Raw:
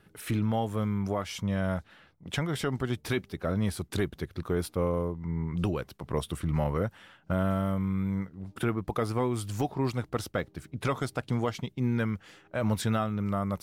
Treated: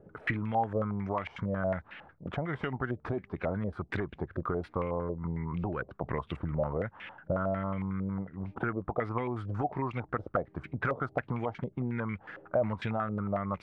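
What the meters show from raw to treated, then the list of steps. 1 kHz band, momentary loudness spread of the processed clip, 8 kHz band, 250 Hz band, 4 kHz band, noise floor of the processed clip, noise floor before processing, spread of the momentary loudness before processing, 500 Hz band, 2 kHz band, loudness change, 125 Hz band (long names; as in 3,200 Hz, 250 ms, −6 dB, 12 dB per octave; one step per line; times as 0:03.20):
+1.0 dB, 6 LU, below −25 dB, −4.5 dB, −12.0 dB, −61 dBFS, −62 dBFS, 6 LU, −1.5 dB, +0.5 dB, −3.0 dB, −4.5 dB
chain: downward compressor 6 to 1, threshold −35 dBFS, peak gain reduction 11.5 dB
low-pass on a step sequencer 11 Hz 560–2,400 Hz
level +3.5 dB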